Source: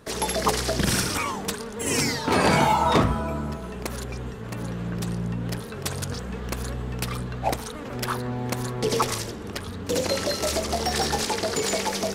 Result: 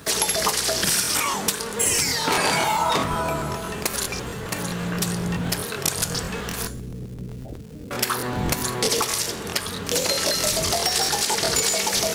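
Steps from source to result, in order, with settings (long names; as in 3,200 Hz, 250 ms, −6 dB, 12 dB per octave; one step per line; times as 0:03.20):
wind on the microphone 120 Hz −34 dBFS
high-pass filter 40 Hz
spectral tilt +2.5 dB per octave
downward compressor 6 to 1, threshold −26 dBFS, peak gain reduction 10.5 dB
0:06.67–0:07.91: Gaussian smoothing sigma 23 samples
surface crackle 460 per second −47 dBFS
on a send at −10.5 dB: convolution reverb, pre-delay 3 ms
on the sum: regular buffer underruns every 0.13 s, samples 1,024, repeat, from 0:00.77
level +7 dB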